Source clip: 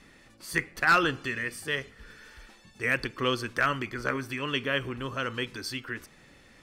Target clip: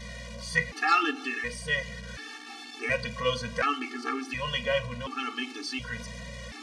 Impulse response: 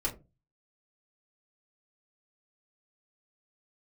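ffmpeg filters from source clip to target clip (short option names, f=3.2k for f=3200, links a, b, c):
-filter_complex "[0:a]aeval=exprs='val(0)+0.5*0.0141*sgn(val(0))':c=same,highpass=f=150:w=0.5412,highpass=f=150:w=1.3066,equalizer=f=350:t=q:w=4:g=-10,equalizer=f=1.5k:t=q:w=4:g=-5,equalizer=f=7.7k:t=q:w=4:g=-5,lowpass=f=8.7k:w=0.5412,lowpass=f=8.7k:w=1.3066,asplit=2[a][b];[1:a]atrim=start_sample=2205,lowpass=8.6k[c];[b][c]afir=irnorm=-1:irlink=0,volume=-10.5dB[d];[a][d]amix=inputs=2:normalize=0,aeval=exprs='val(0)+0.00708*(sin(2*PI*60*n/s)+sin(2*PI*2*60*n/s)/2+sin(2*PI*3*60*n/s)/3+sin(2*PI*4*60*n/s)/4+sin(2*PI*5*60*n/s)/5)':c=same,afftfilt=real='re*gt(sin(2*PI*0.69*pts/sr)*(1-2*mod(floor(b*sr/1024/230),2)),0)':imag='im*gt(sin(2*PI*0.69*pts/sr)*(1-2*mod(floor(b*sr/1024/230),2)),0)':win_size=1024:overlap=0.75,volume=1.5dB"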